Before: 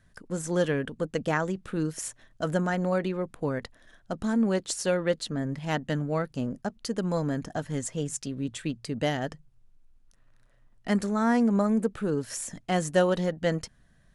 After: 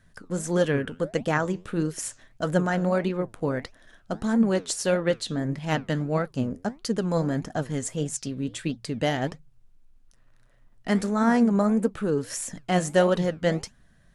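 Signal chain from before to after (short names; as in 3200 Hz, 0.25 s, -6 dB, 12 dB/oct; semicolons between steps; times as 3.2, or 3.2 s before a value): flange 1.6 Hz, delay 3.5 ms, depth 9.1 ms, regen +80%; gain +7 dB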